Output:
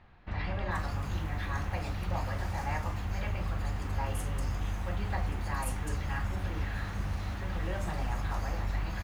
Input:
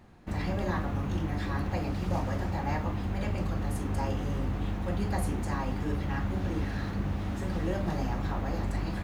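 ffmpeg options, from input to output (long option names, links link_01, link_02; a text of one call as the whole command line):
ffmpeg -i in.wav -filter_complex "[0:a]equalizer=frequency=270:width_type=o:width=2.4:gain=-13,acrossover=split=4200[link_01][link_02];[link_02]adelay=440[link_03];[link_01][link_03]amix=inputs=2:normalize=0,volume=2.5dB" out.wav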